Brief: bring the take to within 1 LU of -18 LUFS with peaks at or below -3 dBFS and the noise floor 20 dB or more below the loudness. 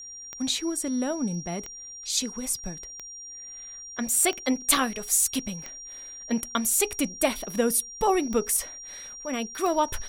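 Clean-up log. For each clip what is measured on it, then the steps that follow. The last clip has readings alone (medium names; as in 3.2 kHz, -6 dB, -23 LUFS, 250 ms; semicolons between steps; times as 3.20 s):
clicks found 8; steady tone 5.7 kHz; tone level -39 dBFS; loudness -26.0 LUFS; peak level -6.0 dBFS; loudness target -18.0 LUFS
-> de-click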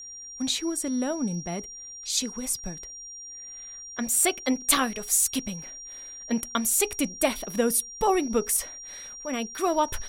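clicks found 0; steady tone 5.7 kHz; tone level -39 dBFS
-> band-stop 5.7 kHz, Q 30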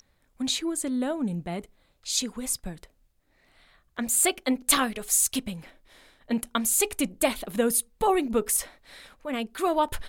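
steady tone not found; loudness -26.0 LUFS; peak level -6.0 dBFS; loudness target -18.0 LUFS
-> trim +8 dB; peak limiter -3 dBFS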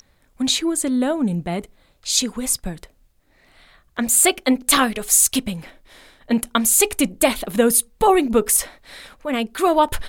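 loudness -18.5 LUFS; peak level -3.0 dBFS; noise floor -59 dBFS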